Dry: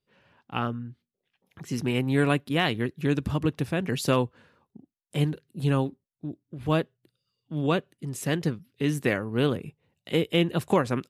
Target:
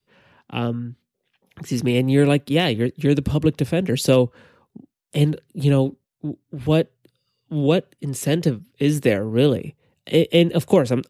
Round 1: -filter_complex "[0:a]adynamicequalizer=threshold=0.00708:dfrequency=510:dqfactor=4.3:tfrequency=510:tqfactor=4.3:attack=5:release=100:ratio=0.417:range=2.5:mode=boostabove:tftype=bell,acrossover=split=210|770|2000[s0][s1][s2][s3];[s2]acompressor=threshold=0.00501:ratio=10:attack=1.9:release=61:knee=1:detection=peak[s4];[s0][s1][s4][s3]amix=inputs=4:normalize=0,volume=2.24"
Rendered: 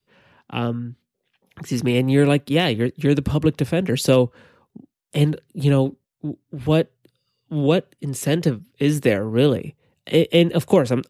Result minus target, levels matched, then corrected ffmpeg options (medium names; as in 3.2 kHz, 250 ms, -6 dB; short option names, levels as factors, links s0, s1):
compression: peak gain reduction -10 dB
-filter_complex "[0:a]adynamicequalizer=threshold=0.00708:dfrequency=510:dqfactor=4.3:tfrequency=510:tqfactor=4.3:attack=5:release=100:ratio=0.417:range=2.5:mode=boostabove:tftype=bell,acrossover=split=210|770|2000[s0][s1][s2][s3];[s2]acompressor=threshold=0.00141:ratio=10:attack=1.9:release=61:knee=1:detection=peak[s4];[s0][s1][s4][s3]amix=inputs=4:normalize=0,volume=2.24"